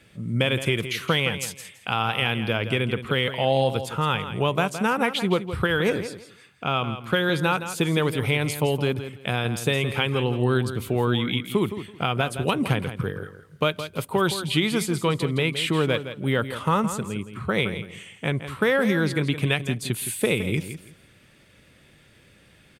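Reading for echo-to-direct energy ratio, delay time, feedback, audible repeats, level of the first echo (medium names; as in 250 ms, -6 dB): -11.0 dB, 166 ms, 21%, 2, -11.0 dB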